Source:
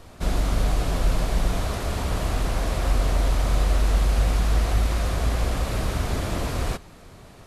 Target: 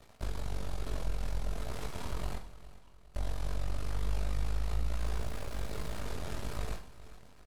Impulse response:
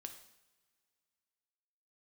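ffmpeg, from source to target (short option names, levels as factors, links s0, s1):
-filter_complex "[0:a]asettb=1/sr,asplit=3[s0][s1][s2];[s0]atrim=end=3.774[s3];[s1]atrim=start=3.77:end=4.35,asetpts=PTS-STARTPTS,afade=t=in:d=0.004:c=qsin,afade=t=out:st=0.576:d=0.004:c=qsin,aecho=1:1:7.4:0.4,atrim=end_sample=25578[s4];[s2]atrim=start=4.346[s5];[s3][s4]acrossfade=d=0.004:c1=hsin:c2=qsin[s6];[s6][s5]acrossfade=d=0.004:c1=qsin:c2=hsin,acompressor=threshold=0.0447:ratio=4,asettb=1/sr,asplit=3[s7][s8][s9];[s7]atrim=end=4.954[s10];[s8]atrim=start=4.95:end=6.01,asetpts=PTS-STARTPTS,afade=t=in:d=0.004:c=qsin,afade=t=out:st=1.056:d=0.004:c=qsin,acrusher=bits=8:dc=4:mix=0:aa=0.000001[s11];[s9]atrim=start=6.006[s12];[s10][s11]acrossfade=d=0.004:c1=hsin:c2=qsin[s13];[s13][s12]acrossfade=d=0.004:c1=qsin:c2=hsin,flanger=delay=18:depth=5.8:speed=1.2,aeval=exprs='max(val(0),0)':c=same,asettb=1/sr,asplit=3[s14][s15][s16];[s14]atrim=end=2.384[s17];[s15]atrim=start=2.38:end=3.15,asetpts=PTS-STARTPTS,afade=t=in:d=0.004:c=qsin,afade=t=out:st=0.766:d=0.004:c=qsin,bandpass=f=970:t=q:w=9:csg=0[s18];[s16]atrim=start=3.146[s19];[s17][s18]acrossfade=d=0.004:c1=hsin:c2=qsin[s20];[s20][s19]acrossfade=d=0.004:c1=qsin:c2=hsin,aeval=exprs='sgn(val(0))*max(abs(val(0))-0.00355,0)':c=same,aecho=1:1:408|816|1224|1632:0.141|0.0622|0.0273|0.012[s21];[1:a]atrim=start_sample=2205,asetrate=61740,aresample=44100[s22];[s21][s22]afir=irnorm=-1:irlink=0,volume=2.11"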